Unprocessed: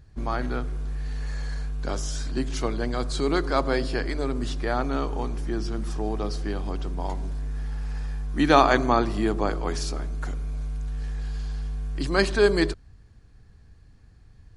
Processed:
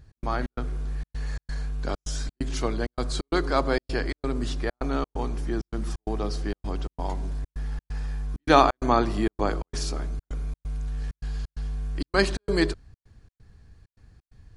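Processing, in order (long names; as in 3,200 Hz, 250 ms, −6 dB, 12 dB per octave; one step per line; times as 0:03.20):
gate pattern "x.xx.xxx" 131 BPM −60 dB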